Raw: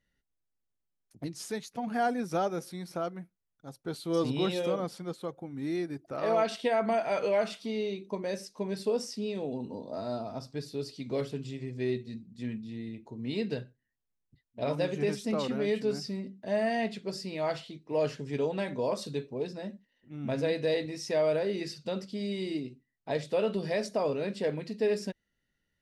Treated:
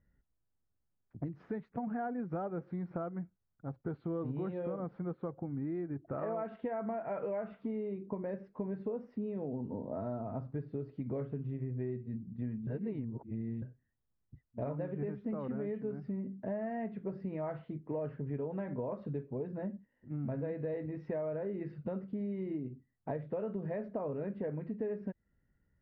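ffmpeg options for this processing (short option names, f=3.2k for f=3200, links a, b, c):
-filter_complex "[0:a]asplit=3[a][b][c];[a]atrim=end=12.672[d];[b]atrim=start=12.668:end=13.622,asetpts=PTS-STARTPTS,areverse[e];[c]atrim=start=13.618[f];[d][e]acrossfade=d=0.004:c1=hsin:c2=hsin[g];[g][f]acrossfade=d=0.004:c1=hsin:c2=hsin,lowpass=f=1.7k:w=0.5412,lowpass=f=1.7k:w=1.3066,equalizer=f=69:w=0.4:g=10.5,acompressor=threshold=-36dB:ratio=6,volume=1dB"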